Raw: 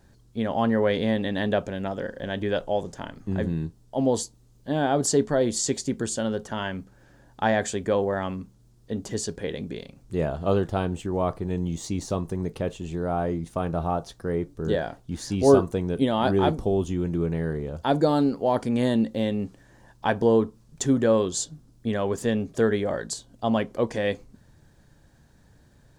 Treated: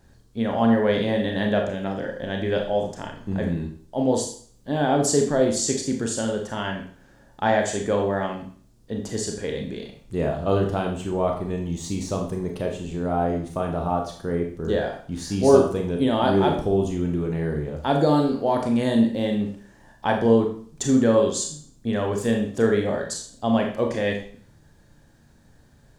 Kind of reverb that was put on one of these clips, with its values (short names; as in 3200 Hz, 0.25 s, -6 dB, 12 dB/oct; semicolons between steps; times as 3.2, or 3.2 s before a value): Schroeder reverb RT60 0.49 s, combs from 27 ms, DRR 2 dB